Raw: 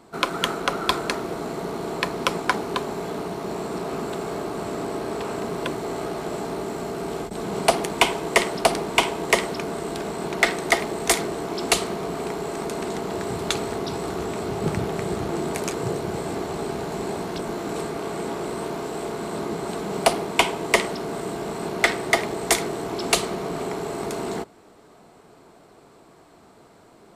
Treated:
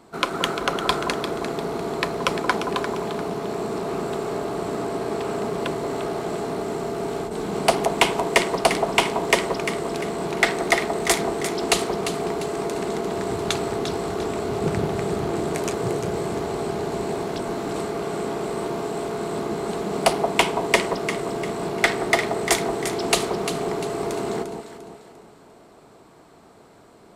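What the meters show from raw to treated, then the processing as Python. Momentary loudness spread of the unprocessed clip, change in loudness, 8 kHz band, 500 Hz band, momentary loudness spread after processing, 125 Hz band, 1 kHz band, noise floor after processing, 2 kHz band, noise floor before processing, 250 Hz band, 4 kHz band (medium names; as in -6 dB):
8 LU, +1.5 dB, -0.5 dB, +2.5 dB, 7 LU, +1.5 dB, +1.5 dB, -50 dBFS, +0.5 dB, -52 dBFS, +1.5 dB, +0.5 dB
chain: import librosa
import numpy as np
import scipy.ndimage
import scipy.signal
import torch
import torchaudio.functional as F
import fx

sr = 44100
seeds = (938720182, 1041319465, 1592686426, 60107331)

p1 = x + fx.echo_alternate(x, sr, ms=174, hz=1100.0, feedback_pct=62, wet_db=-5.0, dry=0)
y = fx.doppler_dist(p1, sr, depth_ms=0.18)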